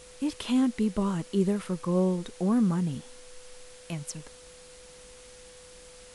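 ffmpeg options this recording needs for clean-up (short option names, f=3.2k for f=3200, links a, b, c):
-af "bandreject=f=500:w=30,afwtdn=0.0032"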